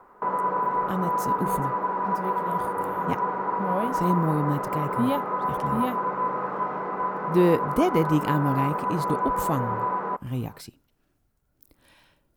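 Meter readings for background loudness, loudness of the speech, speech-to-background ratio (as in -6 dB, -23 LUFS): -27.5 LUFS, -28.0 LUFS, -0.5 dB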